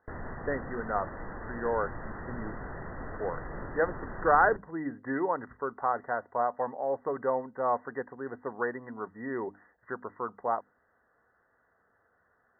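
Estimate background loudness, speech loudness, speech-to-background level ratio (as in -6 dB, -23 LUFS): -42.0 LUFS, -32.0 LUFS, 10.0 dB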